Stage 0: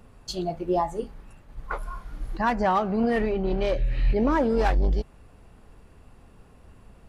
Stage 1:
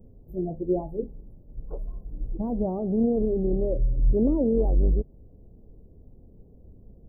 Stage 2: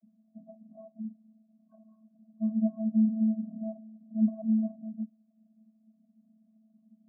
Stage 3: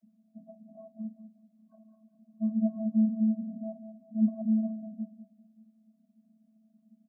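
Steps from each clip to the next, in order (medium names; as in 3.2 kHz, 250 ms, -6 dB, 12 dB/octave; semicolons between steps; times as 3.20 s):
inverse Chebyshev band-stop 2.1–6 kHz, stop band 80 dB; trim +1.5 dB
vocoder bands 32, square 219 Hz; trim -3 dB
feedback delay 195 ms, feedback 40%, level -11.5 dB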